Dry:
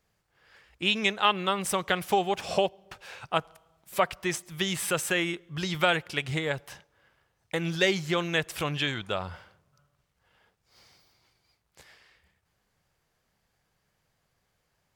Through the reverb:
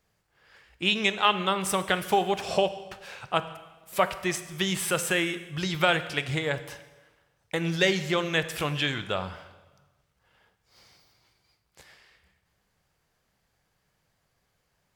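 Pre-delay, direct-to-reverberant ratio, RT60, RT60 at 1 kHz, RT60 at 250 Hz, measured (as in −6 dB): 6 ms, 11.0 dB, 1.2 s, 1.2 s, 1.1 s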